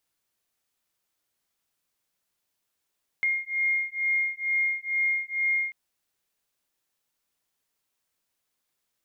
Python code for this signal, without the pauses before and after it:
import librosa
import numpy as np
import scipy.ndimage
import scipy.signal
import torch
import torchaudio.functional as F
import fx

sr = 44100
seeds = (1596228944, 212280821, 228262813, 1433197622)

y = fx.two_tone_beats(sr, length_s=2.49, hz=2130.0, beat_hz=2.2, level_db=-27.0)